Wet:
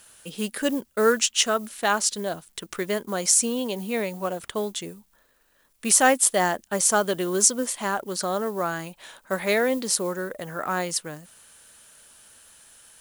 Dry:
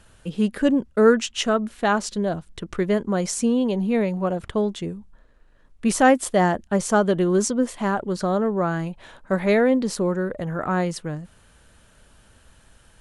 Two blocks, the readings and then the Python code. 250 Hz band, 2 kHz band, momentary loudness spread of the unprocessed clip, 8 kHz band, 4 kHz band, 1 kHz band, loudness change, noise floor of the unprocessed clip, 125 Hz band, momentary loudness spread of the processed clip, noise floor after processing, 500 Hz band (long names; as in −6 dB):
−8.5 dB, +0.5 dB, 11 LU, +10.0 dB, +4.5 dB, −2.0 dB, −1.5 dB, −55 dBFS, −10.5 dB, 13 LU, −64 dBFS, −4.5 dB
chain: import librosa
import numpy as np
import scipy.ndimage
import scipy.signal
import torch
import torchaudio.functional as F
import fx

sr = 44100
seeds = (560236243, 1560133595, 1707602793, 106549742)

y = fx.quant_companded(x, sr, bits=8)
y = fx.riaa(y, sr, side='recording')
y = F.gain(torch.from_numpy(y), -1.5).numpy()